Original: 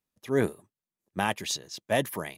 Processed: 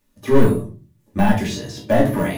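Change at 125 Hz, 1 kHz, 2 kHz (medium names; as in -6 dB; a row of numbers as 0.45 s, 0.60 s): +15.0 dB, +8.5 dB, +5.0 dB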